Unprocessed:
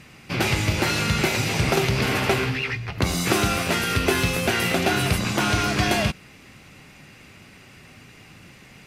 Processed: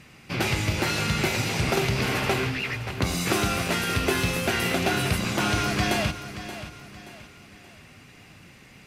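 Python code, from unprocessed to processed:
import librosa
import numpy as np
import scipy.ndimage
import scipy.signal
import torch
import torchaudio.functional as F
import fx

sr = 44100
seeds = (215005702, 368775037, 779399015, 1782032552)

y = np.clip(x, -10.0 ** (-11.5 / 20.0), 10.0 ** (-11.5 / 20.0))
y = fx.echo_feedback(y, sr, ms=577, feedback_pct=39, wet_db=-12.5)
y = y * 10.0 ** (-3.0 / 20.0)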